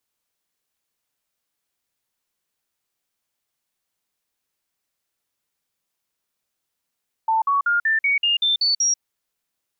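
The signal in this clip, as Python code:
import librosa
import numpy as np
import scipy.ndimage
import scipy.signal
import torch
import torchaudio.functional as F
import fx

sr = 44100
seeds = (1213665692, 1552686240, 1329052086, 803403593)

y = fx.stepped_sweep(sr, from_hz=890.0, direction='up', per_octave=3, tones=9, dwell_s=0.14, gap_s=0.05, level_db=-16.0)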